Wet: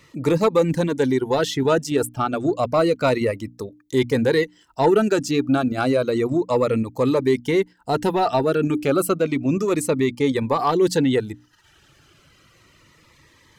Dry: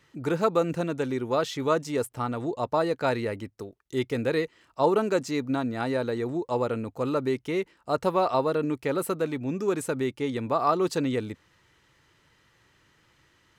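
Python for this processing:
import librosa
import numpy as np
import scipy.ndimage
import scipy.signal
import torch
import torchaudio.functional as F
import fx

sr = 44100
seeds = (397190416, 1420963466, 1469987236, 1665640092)

p1 = fx.dereverb_blind(x, sr, rt60_s=0.68)
p2 = fx.hum_notches(p1, sr, base_hz=60, count=5)
p3 = fx.level_steps(p2, sr, step_db=17)
p4 = p2 + (p3 * 10.0 ** (0.0 / 20.0))
p5 = 10.0 ** (-13.0 / 20.0) * np.tanh(p4 / 10.0 ** (-13.0 / 20.0))
p6 = fx.notch_cascade(p5, sr, direction='falling', hz=0.31)
y = p6 * 10.0 ** (7.5 / 20.0)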